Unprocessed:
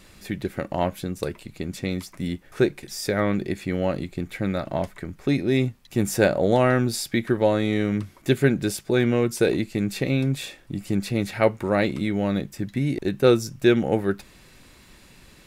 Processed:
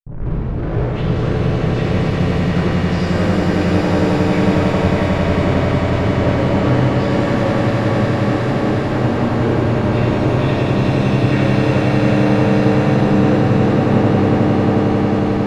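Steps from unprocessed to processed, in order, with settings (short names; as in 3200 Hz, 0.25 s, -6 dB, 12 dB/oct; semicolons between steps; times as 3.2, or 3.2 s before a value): tape start at the beginning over 1.14 s; treble ducked by the level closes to 1000 Hz, closed at -19 dBFS; bell 420 Hz -10 dB 2 oct; fuzz box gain 46 dB, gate -50 dBFS; tape spacing loss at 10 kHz 37 dB; on a send: swelling echo 90 ms, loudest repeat 8, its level -7 dB; on the sum: shimmer reverb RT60 1.9 s, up +7 st, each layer -8 dB, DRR -4.5 dB; gain -9 dB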